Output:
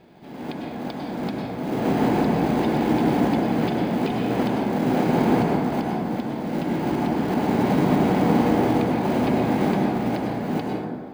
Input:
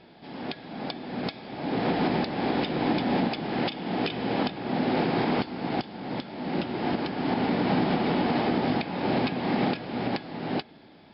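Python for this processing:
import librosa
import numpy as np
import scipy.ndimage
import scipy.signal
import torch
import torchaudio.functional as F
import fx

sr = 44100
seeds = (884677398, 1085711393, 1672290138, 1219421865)

p1 = fx.high_shelf(x, sr, hz=2800.0, db=-9.5)
p2 = fx.sample_hold(p1, sr, seeds[0], rate_hz=1800.0, jitter_pct=0)
p3 = p1 + F.gain(torch.from_numpy(p2), -11.0).numpy()
y = fx.rev_plate(p3, sr, seeds[1], rt60_s=1.9, hf_ratio=0.35, predelay_ms=90, drr_db=-1.5)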